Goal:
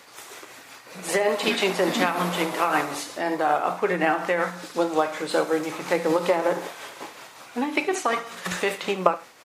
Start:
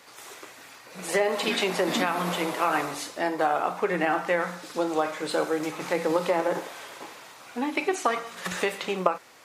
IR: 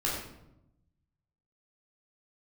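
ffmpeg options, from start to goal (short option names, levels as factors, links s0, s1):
-af "aecho=1:1:73:0.2,tremolo=f=5.4:d=0.4,volume=1.58"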